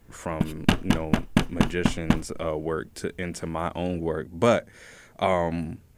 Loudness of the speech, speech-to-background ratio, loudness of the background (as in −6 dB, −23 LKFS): −29.0 LKFS, −2.5 dB, −26.5 LKFS